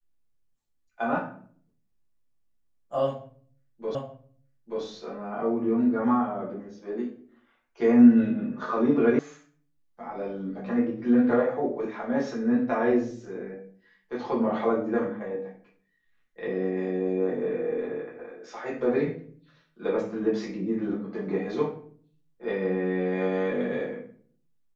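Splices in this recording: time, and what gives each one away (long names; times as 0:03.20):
0:03.95: the same again, the last 0.88 s
0:09.19: cut off before it has died away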